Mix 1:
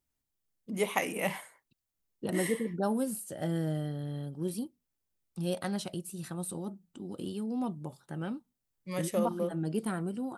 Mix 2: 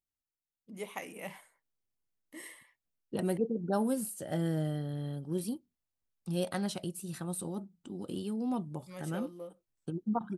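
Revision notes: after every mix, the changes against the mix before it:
first voice −11.0 dB
second voice: entry +0.90 s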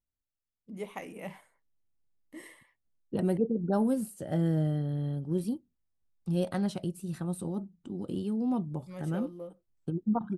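master: add spectral tilt −2 dB per octave

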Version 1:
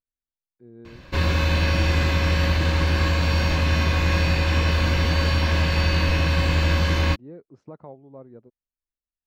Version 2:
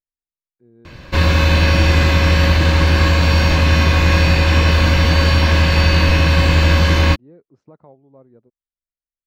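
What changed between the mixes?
speech −4.0 dB
background +7.5 dB

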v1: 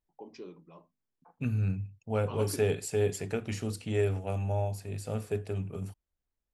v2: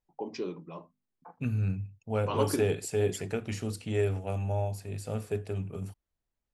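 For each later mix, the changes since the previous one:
first voice +10.0 dB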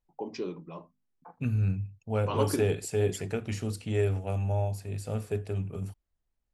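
master: add low-shelf EQ 70 Hz +8 dB

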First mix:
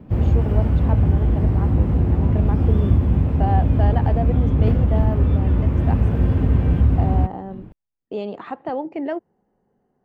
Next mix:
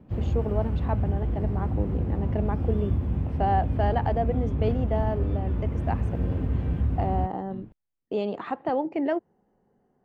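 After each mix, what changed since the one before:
background −9.5 dB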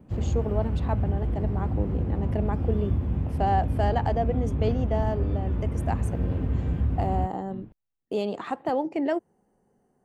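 first voice: remove low-pass filter 3,300 Hz 12 dB per octave

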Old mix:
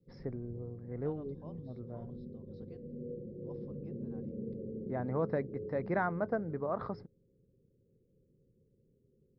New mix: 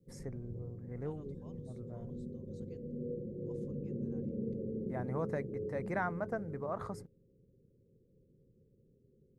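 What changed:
first voice: add parametric band 310 Hz −8.5 dB 2.7 octaves
second voice: add resonant band-pass 3,500 Hz, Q 0.53
master: remove Chebyshev low-pass with heavy ripple 5,300 Hz, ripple 3 dB

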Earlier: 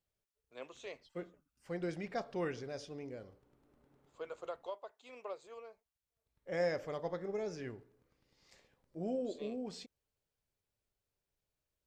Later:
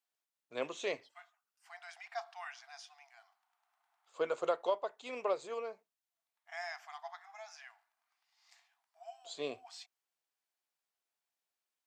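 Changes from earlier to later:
first voice +10.5 dB
second voice: add linear-phase brick-wall high-pass 650 Hz

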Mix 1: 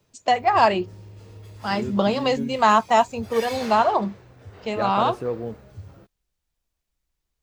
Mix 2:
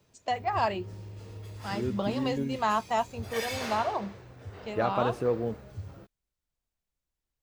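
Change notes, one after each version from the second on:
first voice −10.5 dB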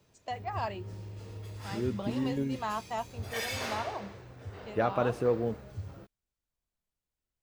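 first voice −7.5 dB

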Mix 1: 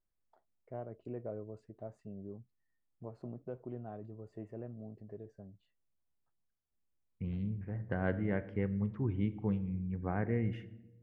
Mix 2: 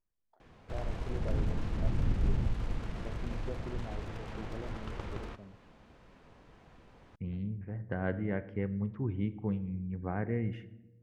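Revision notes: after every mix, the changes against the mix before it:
background: unmuted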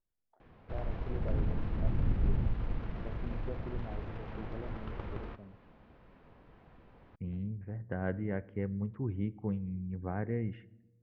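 second voice: send −7.0 dB
master: add high-frequency loss of the air 290 metres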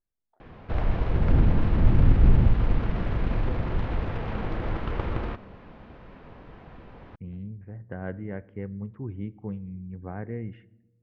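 background +12.0 dB

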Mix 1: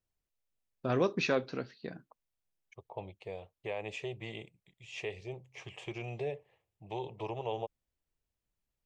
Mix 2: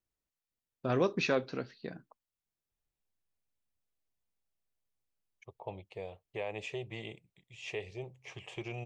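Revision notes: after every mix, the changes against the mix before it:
second voice: entry +2.70 s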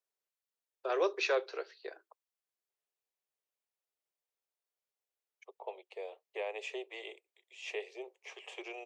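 master: add Butterworth high-pass 370 Hz 72 dB per octave

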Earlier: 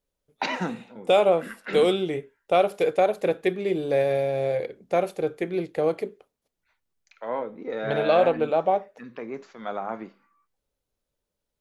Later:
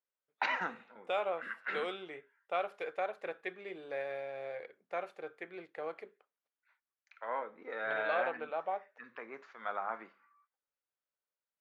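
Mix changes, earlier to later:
second voice −6.0 dB
master: add resonant band-pass 1,500 Hz, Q 1.4

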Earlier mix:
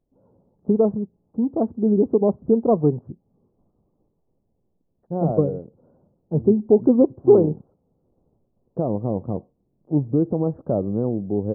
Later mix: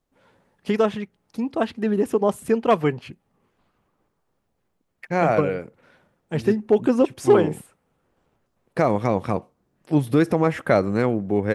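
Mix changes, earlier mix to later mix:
first voice −5.0 dB
master: remove Gaussian smoothing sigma 13 samples

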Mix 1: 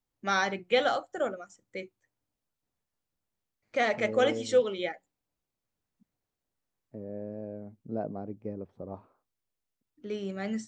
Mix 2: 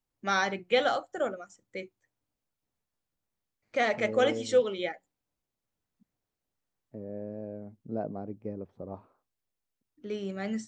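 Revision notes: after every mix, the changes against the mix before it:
nothing changed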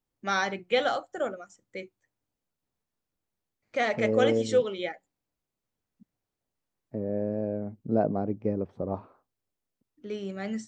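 second voice +9.0 dB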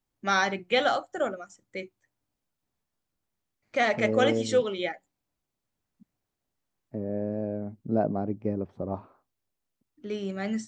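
first voice +3.0 dB
master: add parametric band 480 Hz −4.5 dB 0.25 octaves

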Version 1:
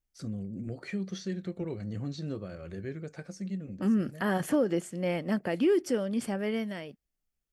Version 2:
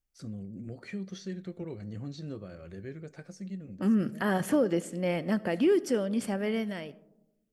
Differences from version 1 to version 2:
first voice −4.0 dB
reverb: on, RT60 0.95 s

